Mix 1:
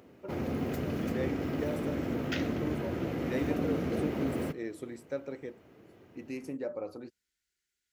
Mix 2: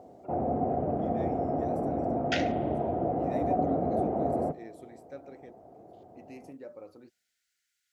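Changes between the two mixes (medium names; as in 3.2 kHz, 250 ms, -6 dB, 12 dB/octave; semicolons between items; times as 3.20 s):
first voice -8.5 dB; second voice +5.5 dB; background: add resonant low-pass 720 Hz, resonance Q 7.7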